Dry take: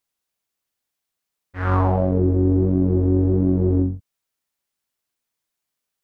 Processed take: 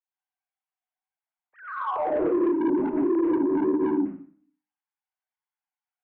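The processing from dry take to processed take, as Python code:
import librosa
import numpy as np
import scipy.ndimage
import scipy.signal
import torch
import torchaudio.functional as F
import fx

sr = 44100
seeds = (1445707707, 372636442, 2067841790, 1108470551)

y = fx.sine_speech(x, sr)
y = fx.room_flutter(y, sr, wall_m=9.6, rt60_s=0.38, at=(1.66, 3.95))
y = fx.rev_plate(y, sr, seeds[0], rt60_s=0.53, hf_ratio=0.9, predelay_ms=80, drr_db=-5.5)
y = 10.0 ** (-12.0 / 20.0) * np.tanh(y / 10.0 ** (-12.0 / 20.0))
y = fx.lowpass(y, sr, hz=1000.0, slope=6)
y = fx.hum_notches(y, sr, base_hz=50, count=6)
y = y * 10.0 ** (-6.0 / 20.0)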